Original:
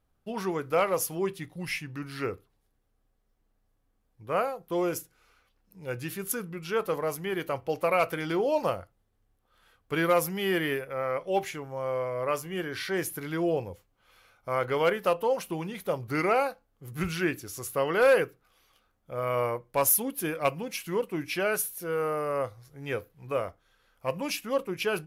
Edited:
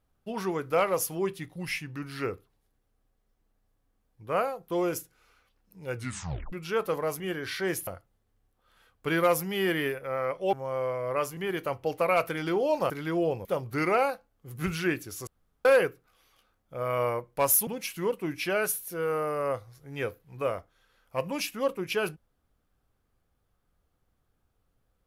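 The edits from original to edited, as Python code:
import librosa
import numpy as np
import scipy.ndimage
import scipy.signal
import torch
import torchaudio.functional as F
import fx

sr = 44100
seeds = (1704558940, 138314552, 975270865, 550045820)

y = fx.edit(x, sr, fx.tape_stop(start_s=5.95, length_s=0.57),
    fx.swap(start_s=7.2, length_s=1.53, other_s=12.49, other_length_s=0.67),
    fx.cut(start_s=11.39, length_s=0.26),
    fx.cut(start_s=13.71, length_s=2.11),
    fx.room_tone_fill(start_s=17.64, length_s=0.38),
    fx.cut(start_s=20.04, length_s=0.53), tone=tone)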